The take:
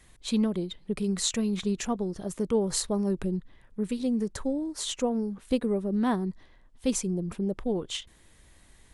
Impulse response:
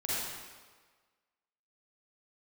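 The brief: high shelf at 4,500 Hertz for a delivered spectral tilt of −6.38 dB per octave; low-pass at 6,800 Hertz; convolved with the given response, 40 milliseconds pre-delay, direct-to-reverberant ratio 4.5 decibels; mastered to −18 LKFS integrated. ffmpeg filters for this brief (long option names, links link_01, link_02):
-filter_complex "[0:a]lowpass=6800,highshelf=frequency=4500:gain=-8.5,asplit=2[link_01][link_02];[1:a]atrim=start_sample=2205,adelay=40[link_03];[link_02][link_03]afir=irnorm=-1:irlink=0,volume=-11dB[link_04];[link_01][link_04]amix=inputs=2:normalize=0,volume=11dB"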